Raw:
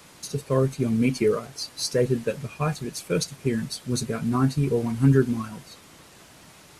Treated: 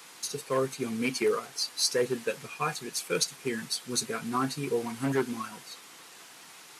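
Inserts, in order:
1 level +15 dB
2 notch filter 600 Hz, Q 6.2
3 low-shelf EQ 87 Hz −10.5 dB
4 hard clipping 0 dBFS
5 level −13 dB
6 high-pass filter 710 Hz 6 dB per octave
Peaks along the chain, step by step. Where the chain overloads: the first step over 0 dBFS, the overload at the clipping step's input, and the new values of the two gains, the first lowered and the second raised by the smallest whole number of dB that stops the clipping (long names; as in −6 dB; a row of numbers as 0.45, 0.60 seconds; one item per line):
+8.0, +7.0, +6.5, 0.0, −13.0, −13.0 dBFS
step 1, 6.5 dB
step 1 +8 dB, step 5 −6 dB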